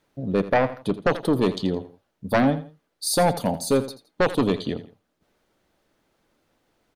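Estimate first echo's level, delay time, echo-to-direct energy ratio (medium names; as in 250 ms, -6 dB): -14.5 dB, 83 ms, -14.0 dB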